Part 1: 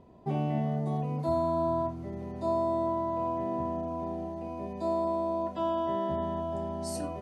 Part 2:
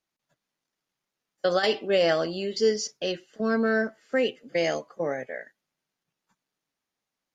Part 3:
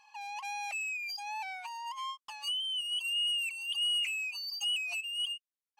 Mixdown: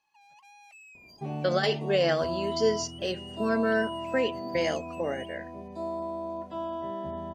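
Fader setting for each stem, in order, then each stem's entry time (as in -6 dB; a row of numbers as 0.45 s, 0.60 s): -4.5 dB, -2.5 dB, -16.0 dB; 0.95 s, 0.00 s, 0.00 s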